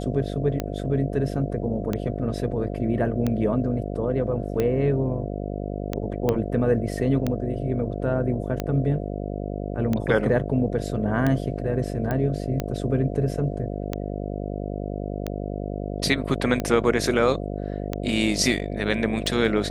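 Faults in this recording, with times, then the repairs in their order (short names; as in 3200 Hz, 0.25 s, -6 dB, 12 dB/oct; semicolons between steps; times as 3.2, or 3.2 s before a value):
buzz 50 Hz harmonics 14 -30 dBFS
tick 45 rpm -12 dBFS
6.29 pop -10 dBFS
12.11 pop -15 dBFS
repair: de-click; de-hum 50 Hz, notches 14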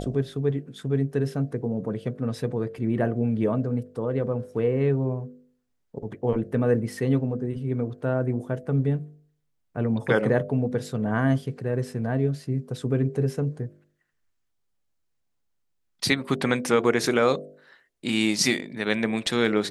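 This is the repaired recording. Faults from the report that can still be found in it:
6.29 pop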